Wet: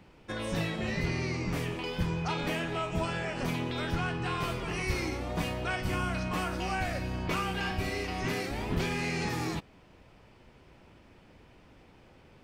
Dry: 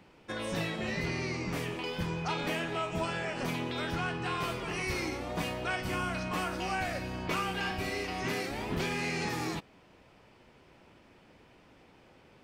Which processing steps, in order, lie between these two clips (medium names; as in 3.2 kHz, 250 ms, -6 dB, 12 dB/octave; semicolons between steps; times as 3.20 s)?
bass shelf 110 Hz +10.5 dB